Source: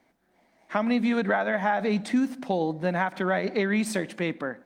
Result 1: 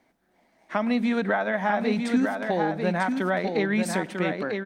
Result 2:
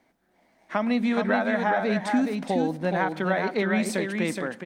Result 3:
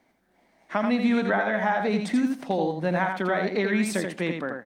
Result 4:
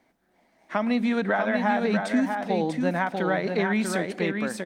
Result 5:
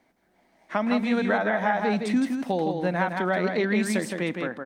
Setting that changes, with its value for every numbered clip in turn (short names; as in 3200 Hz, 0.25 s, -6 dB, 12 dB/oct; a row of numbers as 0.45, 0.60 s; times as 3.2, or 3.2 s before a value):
echo, time: 946, 420, 84, 642, 164 ms